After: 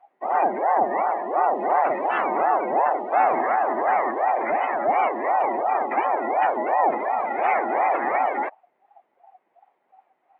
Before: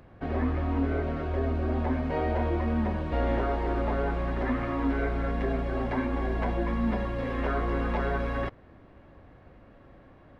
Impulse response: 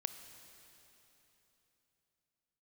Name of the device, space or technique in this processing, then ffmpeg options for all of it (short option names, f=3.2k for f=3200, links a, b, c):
voice changer toy: -filter_complex "[0:a]aeval=exprs='val(0)*sin(2*PI*550*n/s+550*0.5/2.8*sin(2*PI*2.8*n/s))':c=same,highpass=440,equalizer=f=470:t=q:w=4:g=-4,equalizer=f=760:t=q:w=4:g=7,equalizer=f=1.4k:t=q:w=4:g=-3,equalizer=f=2k:t=q:w=4:g=5,lowpass=f=4k:w=0.5412,lowpass=f=4k:w=1.3066,asettb=1/sr,asplit=3[a][b][c];[a]atrim=end=1.564[d];[b]atrim=start=1.56:end=2.22,asetpts=PTS-STARTPTS,afade=t=in:d=0.004:c=qsin,afade=t=out:st=0.656:d=0.004:c=qsin,aemphasis=mode=production:type=75kf[e];[c]atrim=start=2.216[f];[d][e]acrossfade=d=0.004:c1=hsin:c2=qsin[g];[g][f]acrossfade=d=0.004:c1=qsin:c2=hsin,afftdn=nr=21:nf=-38,volume=8.5dB"